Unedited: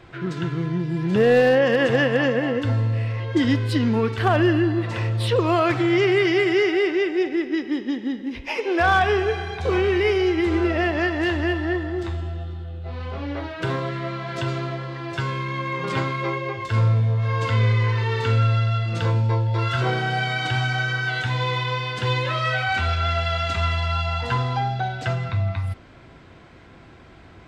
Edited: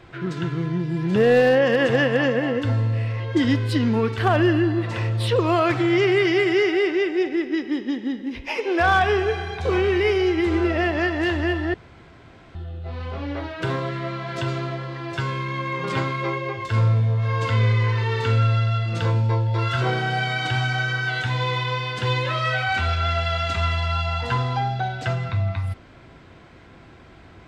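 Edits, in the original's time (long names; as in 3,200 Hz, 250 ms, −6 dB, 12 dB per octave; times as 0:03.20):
0:11.74–0:12.55: fill with room tone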